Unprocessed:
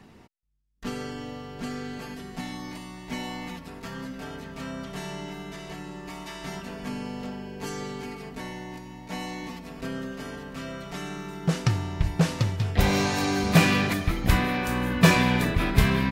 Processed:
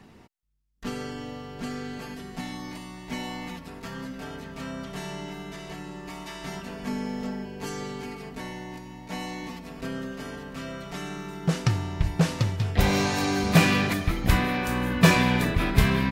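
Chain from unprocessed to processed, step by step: 6.87–7.45 comb 4.6 ms, depth 65%

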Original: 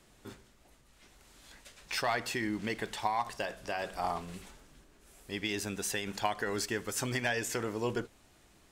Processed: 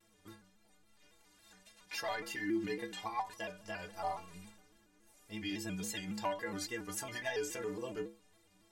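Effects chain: bell 65 Hz -5 dB 0.89 oct; metallic resonator 94 Hz, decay 0.47 s, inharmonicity 0.03; shaped vibrato square 3.6 Hz, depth 100 cents; gain +5 dB

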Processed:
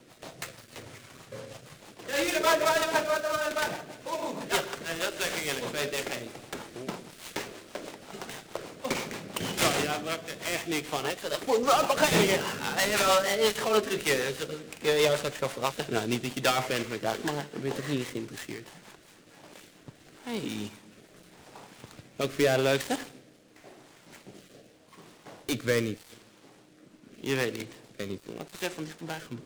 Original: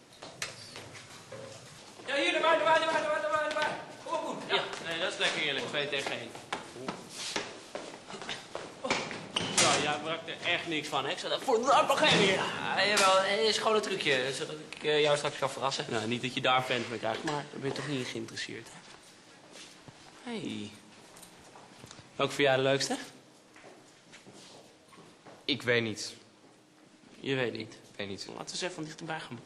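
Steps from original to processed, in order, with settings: switching dead time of 0.11 ms; rotary speaker horn 6.3 Hz, later 0.85 Hz, at 18.64; gain +5 dB

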